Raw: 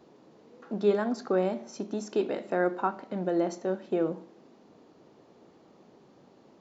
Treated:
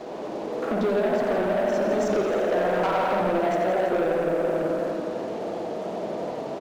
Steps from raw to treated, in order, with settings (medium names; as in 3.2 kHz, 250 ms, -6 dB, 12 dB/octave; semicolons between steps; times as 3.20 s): peaking EQ 600 Hz +14 dB 0.67 oct; band-stop 550 Hz, Q 12; on a send: feedback delay 165 ms, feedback 56%, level -13.5 dB; on the sum: spring tank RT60 1.4 s, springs 49/55 ms, chirp 40 ms, DRR -2.5 dB; compression 10:1, threshold -32 dBFS, peak gain reduction 21 dB; waveshaping leveller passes 3; peaking EQ 69 Hz -5.5 dB 2.5 oct; modulated delay 85 ms, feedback 80%, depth 119 cents, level -8.5 dB; trim +4 dB